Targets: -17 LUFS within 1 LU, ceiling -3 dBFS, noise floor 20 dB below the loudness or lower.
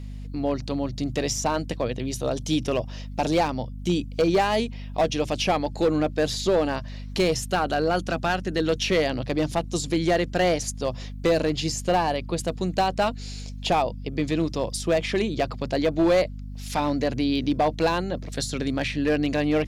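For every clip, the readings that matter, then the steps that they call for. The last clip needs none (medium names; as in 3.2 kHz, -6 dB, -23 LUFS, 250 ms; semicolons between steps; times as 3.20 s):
clipped samples 1.2%; clipping level -15.0 dBFS; hum 50 Hz; highest harmonic 250 Hz; hum level -33 dBFS; loudness -25.0 LUFS; peak level -15.0 dBFS; loudness target -17.0 LUFS
-> clip repair -15 dBFS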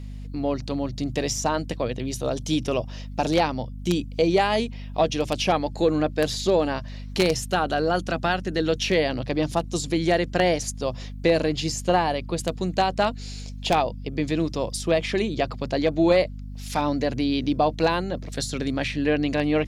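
clipped samples 0.0%; hum 50 Hz; highest harmonic 250 Hz; hum level -33 dBFS
-> hum notches 50/100/150/200/250 Hz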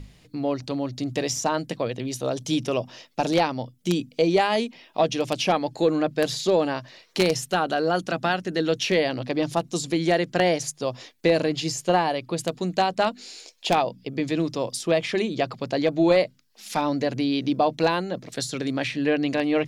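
hum not found; loudness -25.0 LUFS; peak level -6.0 dBFS; loudness target -17.0 LUFS
-> trim +8 dB; peak limiter -3 dBFS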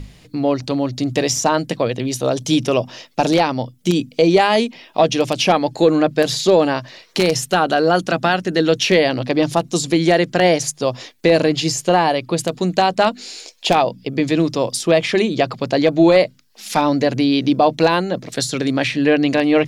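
loudness -17.5 LUFS; peak level -3.0 dBFS; noise floor -49 dBFS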